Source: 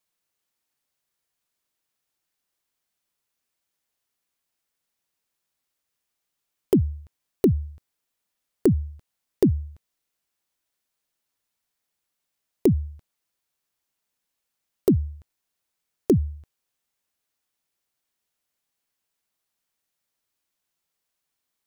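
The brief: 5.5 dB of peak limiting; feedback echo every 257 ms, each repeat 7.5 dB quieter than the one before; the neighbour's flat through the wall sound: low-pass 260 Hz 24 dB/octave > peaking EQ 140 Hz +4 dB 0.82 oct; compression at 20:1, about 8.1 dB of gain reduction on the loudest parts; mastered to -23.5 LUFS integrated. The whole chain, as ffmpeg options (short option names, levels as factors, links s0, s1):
-af "acompressor=threshold=0.0891:ratio=20,alimiter=limit=0.211:level=0:latency=1,lowpass=f=260:w=0.5412,lowpass=f=260:w=1.3066,equalizer=f=140:t=o:w=0.82:g=4,aecho=1:1:257|514|771|1028|1285:0.422|0.177|0.0744|0.0312|0.0131,volume=3.35"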